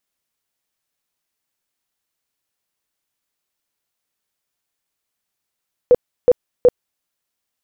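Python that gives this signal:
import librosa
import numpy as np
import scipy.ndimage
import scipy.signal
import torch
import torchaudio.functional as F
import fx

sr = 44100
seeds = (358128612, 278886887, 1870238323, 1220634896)

y = fx.tone_burst(sr, hz=493.0, cycles=18, every_s=0.37, bursts=3, level_db=-6.0)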